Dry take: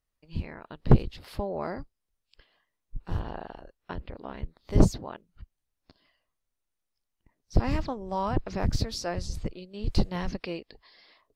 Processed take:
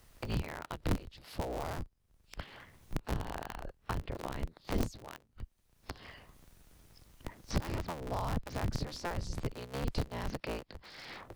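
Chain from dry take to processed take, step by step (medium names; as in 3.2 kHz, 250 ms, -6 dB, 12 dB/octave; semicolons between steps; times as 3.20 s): cycle switcher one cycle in 3, inverted; three bands compressed up and down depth 100%; trim -7 dB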